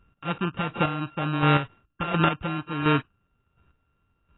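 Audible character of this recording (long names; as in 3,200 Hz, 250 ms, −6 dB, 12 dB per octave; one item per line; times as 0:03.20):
a buzz of ramps at a fixed pitch in blocks of 32 samples
chopped level 1.4 Hz, depth 60%, duty 20%
AAC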